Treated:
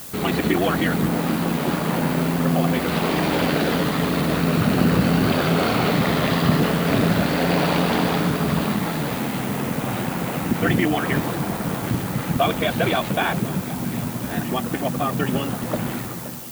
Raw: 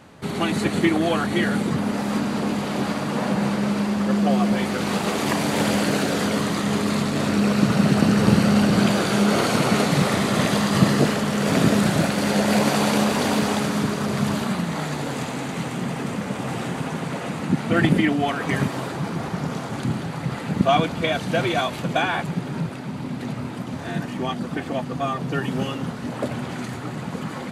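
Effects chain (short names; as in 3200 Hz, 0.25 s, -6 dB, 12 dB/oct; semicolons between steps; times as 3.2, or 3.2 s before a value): ending faded out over 0.99 s; LPF 4500 Hz 24 dB/oct; in parallel at +2.5 dB: limiter -14 dBFS, peak gain reduction 10.5 dB; on the sum: added noise blue -32 dBFS; granular stretch 0.6×, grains 23 ms; on a send: echo with dull and thin repeats by turns 0.522 s, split 990 Hz, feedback 51%, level -13.5 dB; on the sum: gain -4 dB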